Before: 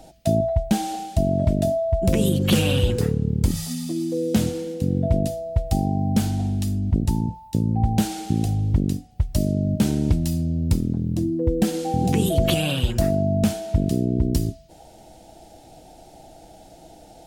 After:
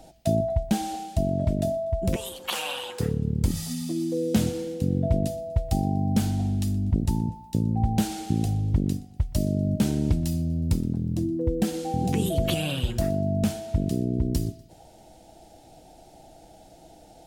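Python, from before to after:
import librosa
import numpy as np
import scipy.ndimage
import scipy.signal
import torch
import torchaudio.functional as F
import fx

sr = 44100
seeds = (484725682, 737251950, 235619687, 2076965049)

y = fx.rider(x, sr, range_db=10, speed_s=2.0)
y = fx.highpass_res(y, sr, hz=910.0, q=3.4, at=(2.16, 3.0))
y = fx.echo_feedback(y, sr, ms=122, feedback_pct=47, wet_db=-22.0)
y = y * librosa.db_to_amplitude(-4.0)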